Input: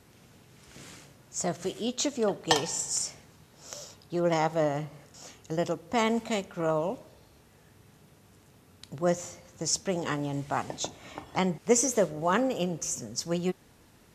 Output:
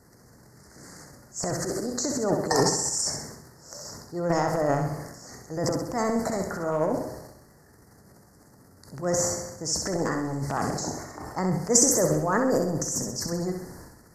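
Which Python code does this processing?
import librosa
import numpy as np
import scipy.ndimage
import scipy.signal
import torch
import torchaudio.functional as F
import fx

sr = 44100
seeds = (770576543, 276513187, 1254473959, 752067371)

p1 = scipy.signal.sosfilt(scipy.signal.ellip(3, 1.0, 40, [1900.0, 4600.0], 'bandstop', fs=sr, output='sos'), x)
p2 = fx.transient(p1, sr, attack_db=-4, sustain_db=12)
p3 = fx.hpss(p2, sr, part='percussive', gain_db=3)
y = p3 + fx.echo_feedback(p3, sr, ms=65, feedback_pct=50, wet_db=-6.0, dry=0)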